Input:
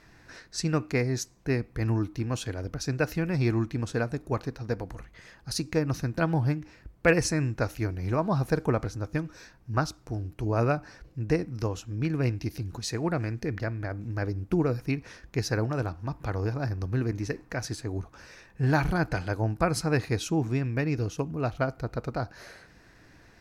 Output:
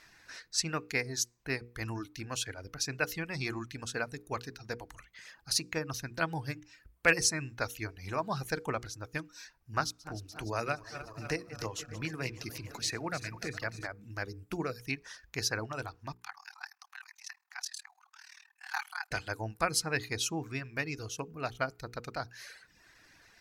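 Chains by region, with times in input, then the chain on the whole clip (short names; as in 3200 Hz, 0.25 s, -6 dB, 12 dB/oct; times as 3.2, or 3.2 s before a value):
9.8–13.87 regenerating reverse delay 0.148 s, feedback 77%, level -13 dB + three-band squash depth 40%
16.14–19.11 Chebyshev high-pass 750 Hz, order 10 + AM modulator 38 Hz, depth 85%
whole clip: reverb removal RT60 0.78 s; tilt shelf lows -7.5 dB, about 920 Hz; notches 60/120/180/240/300/360/420/480 Hz; gain -3.5 dB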